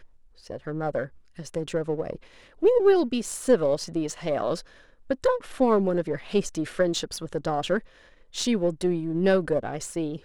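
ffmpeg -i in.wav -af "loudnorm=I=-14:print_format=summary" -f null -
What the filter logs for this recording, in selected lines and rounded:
Input Integrated:    -26.1 LUFS
Input True Peak:      -9.0 dBTP
Input LRA:             1.9 LU
Input Threshold:     -36.7 LUFS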